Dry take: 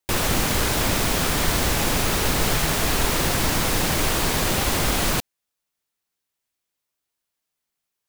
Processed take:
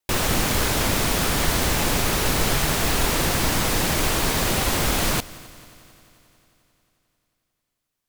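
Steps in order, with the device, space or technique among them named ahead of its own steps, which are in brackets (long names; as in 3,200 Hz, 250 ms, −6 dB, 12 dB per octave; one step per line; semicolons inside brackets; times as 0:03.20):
multi-head tape echo (echo machine with several playback heads 89 ms, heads second and third, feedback 63%, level −22.5 dB; tape wow and flutter)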